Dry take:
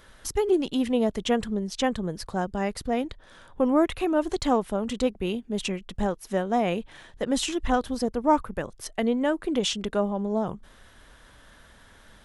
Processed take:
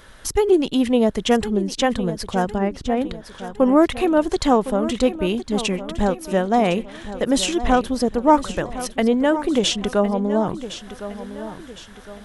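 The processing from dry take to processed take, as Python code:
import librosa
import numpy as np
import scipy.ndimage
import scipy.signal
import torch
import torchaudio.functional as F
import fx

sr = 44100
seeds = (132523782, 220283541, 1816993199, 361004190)

y = fx.spacing_loss(x, sr, db_at_10k=31, at=(2.57, 3.0), fade=0.02)
y = fx.echo_feedback(y, sr, ms=1060, feedback_pct=42, wet_db=-13)
y = y * librosa.db_to_amplitude(6.5)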